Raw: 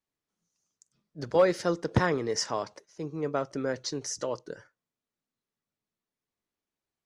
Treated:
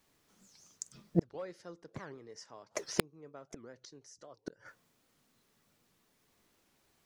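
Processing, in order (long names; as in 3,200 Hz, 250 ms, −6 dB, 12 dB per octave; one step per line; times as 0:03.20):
gate with flip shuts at −32 dBFS, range −39 dB
wrap-around overflow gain 31.5 dB
wow of a warped record 78 rpm, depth 250 cents
level +18 dB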